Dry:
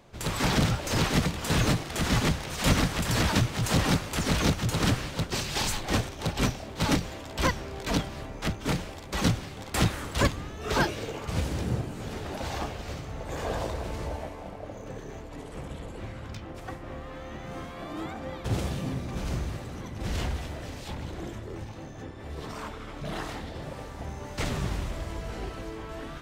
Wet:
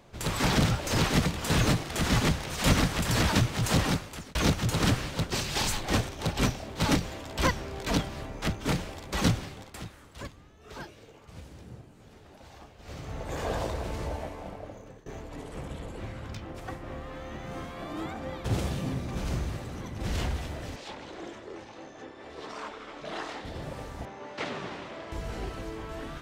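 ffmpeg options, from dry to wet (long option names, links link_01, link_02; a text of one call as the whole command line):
ffmpeg -i in.wav -filter_complex "[0:a]asettb=1/sr,asplit=3[link_01][link_02][link_03];[link_01]atrim=end=20.764[link_04];[link_02]atrim=start=20.76:end=23.45,asetpts=PTS-STARTPTS,afade=type=in:duration=0.004:curve=qsin,afade=type=out:start_time=2.686:duration=0.004:curve=qsin,acrossover=split=260 7700:gain=0.112 1 0.1[link_05][link_06][link_07];[link_05][link_06][link_07]amix=inputs=3:normalize=0[link_08];[link_03]atrim=start=23.446[link_09];[link_04][link_08]acrossfade=duration=0.004:curve1=hsin:curve2=qsin[link_10];[link_10][link_09]acrossfade=duration=0.004:curve1=qsin:curve2=hsin,asettb=1/sr,asplit=3[link_11][link_12][link_13];[link_11]atrim=end=24.054[link_14];[link_12]atrim=start=24.05:end=25.12,asetpts=PTS-STARTPTS,afade=type=in:duration=0.004:curve=qsin,afade=type=out:start_time=1.066:duration=0.004:curve=qsin,highpass=290,lowpass=3800[link_15];[link_13]atrim=start=25.116[link_16];[link_14][link_15]acrossfade=duration=0.004:curve1=hsin:curve2=qsin[link_17];[link_17][link_16]acrossfade=duration=0.004:curve1=qsin:curve2=hsin,asplit=5[link_18][link_19][link_20][link_21][link_22];[link_18]atrim=end=4.35,asetpts=PTS-STARTPTS,afade=type=out:start_time=3.74:duration=0.61[link_23];[link_19]atrim=start=4.35:end=9.78,asetpts=PTS-STARTPTS,afade=type=in:duration=0.004:curve=hsin,afade=type=out:start_time=5.09:duration=0.34:silence=0.141254[link_24];[link_20]atrim=start=9.78:end=12.77,asetpts=PTS-STARTPTS,volume=-17dB[link_25];[link_21]atrim=start=12.77:end=15.06,asetpts=PTS-STARTPTS,afade=type=in:duration=0.34:silence=0.141254,afade=type=out:start_time=1.75:duration=0.54:silence=0.11885[link_26];[link_22]atrim=start=15.06,asetpts=PTS-STARTPTS,afade=type=in:duration=0.004:curve=hsin:silence=0.11885[link_27];[link_23][link_24][link_25][link_26][link_27]concat=n=5:v=0:a=1" out.wav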